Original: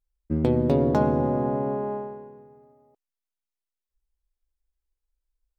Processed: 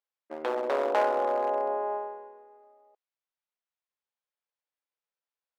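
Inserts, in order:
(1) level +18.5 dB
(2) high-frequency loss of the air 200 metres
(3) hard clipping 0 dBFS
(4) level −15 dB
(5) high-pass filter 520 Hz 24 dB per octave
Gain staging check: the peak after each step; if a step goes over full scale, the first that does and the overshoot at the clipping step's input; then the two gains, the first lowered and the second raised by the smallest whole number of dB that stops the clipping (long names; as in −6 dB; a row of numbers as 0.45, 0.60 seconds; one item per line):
+9.5, +9.0, 0.0, −15.0, −12.5 dBFS
step 1, 9.0 dB
step 1 +9.5 dB, step 4 −6 dB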